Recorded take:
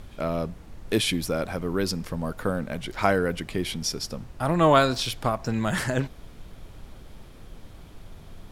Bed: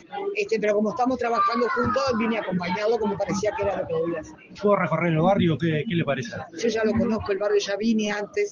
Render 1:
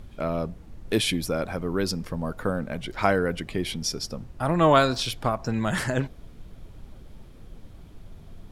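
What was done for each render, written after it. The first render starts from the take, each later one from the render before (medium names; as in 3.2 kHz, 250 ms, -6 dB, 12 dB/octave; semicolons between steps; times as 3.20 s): noise reduction 6 dB, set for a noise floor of -47 dBFS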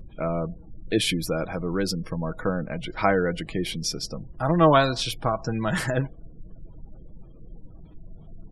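spectral gate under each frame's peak -30 dB strong; comb 6.2 ms, depth 37%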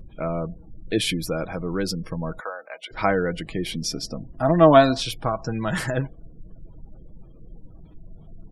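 2.40–2.91 s: high-pass 620 Hz 24 dB/octave; 3.73–4.99 s: small resonant body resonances 260/660/1800 Hz, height 9 dB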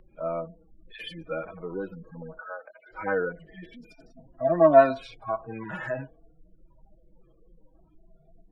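harmonic-percussive separation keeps harmonic; three-band isolator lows -14 dB, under 370 Hz, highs -17 dB, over 2.8 kHz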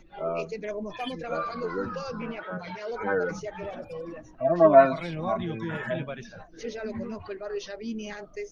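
add bed -12 dB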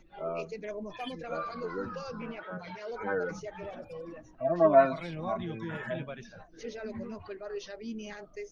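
trim -5 dB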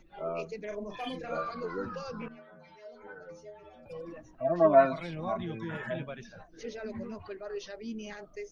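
0.67–1.50 s: doubling 39 ms -5 dB; 2.28–3.86 s: inharmonic resonator 76 Hz, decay 0.53 s, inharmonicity 0.008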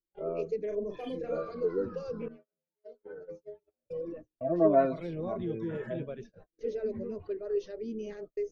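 gate -47 dBFS, range -40 dB; FFT filter 250 Hz 0 dB, 440 Hz +9 dB, 790 Hz -9 dB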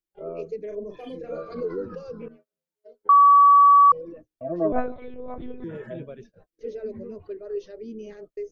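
1.41–2.01 s: swell ahead of each attack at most 93 dB/s; 3.09–3.92 s: bleep 1.14 kHz -10 dBFS; 4.72–5.64 s: monotone LPC vocoder at 8 kHz 250 Hz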